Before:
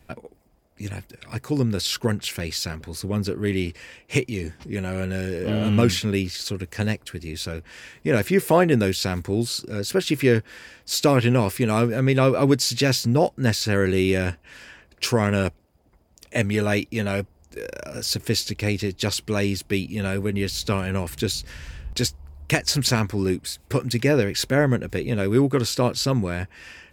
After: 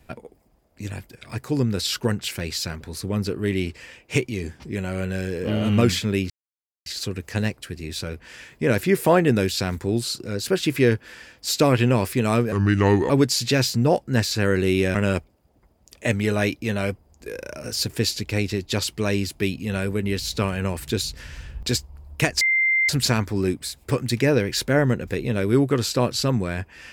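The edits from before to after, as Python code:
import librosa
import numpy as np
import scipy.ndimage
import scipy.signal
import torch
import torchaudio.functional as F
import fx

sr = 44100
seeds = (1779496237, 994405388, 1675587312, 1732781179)

y = fx.edit(x, sr, fx.insert_silence(at_s=6.3, length_s=0.56),
    fx.speed_span(start_s=11.96, length_s=0.44, speed=0.76),
    fx.cut(start_s=14.25, length_s=1.0),
    fx.insert_tone(at_s=22.71, length_s=0.48, hz=2090.0, db=-16.5), tone=tone)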